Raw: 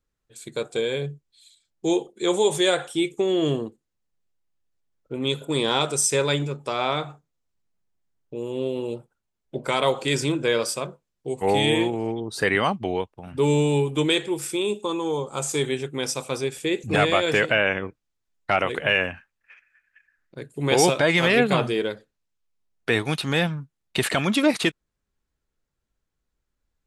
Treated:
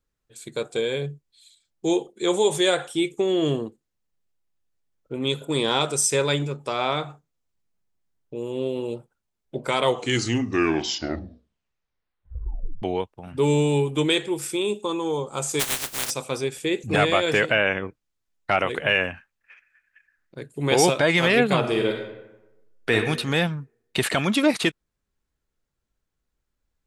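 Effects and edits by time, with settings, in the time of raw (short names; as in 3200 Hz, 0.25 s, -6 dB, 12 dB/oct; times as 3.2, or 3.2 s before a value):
9.78 tape stop 3.04 s
15.59–16.09 spectral contrast lowered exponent 0.1
21.59–22.94 reverb throw, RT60 1 s, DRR 1.5 dB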